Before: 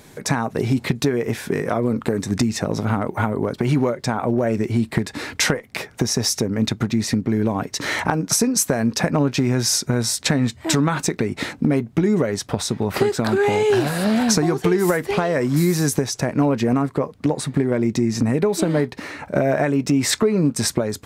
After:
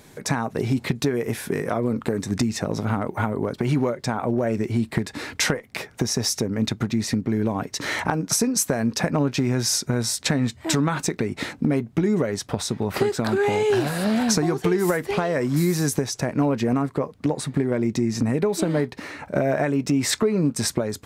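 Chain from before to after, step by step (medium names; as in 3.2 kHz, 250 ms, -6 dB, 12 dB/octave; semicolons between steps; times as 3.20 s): 1.14–1.69 s: peaking EQ 11 kHz +11.5 dB -> +5 dB 0.56 oct; trim -3 dB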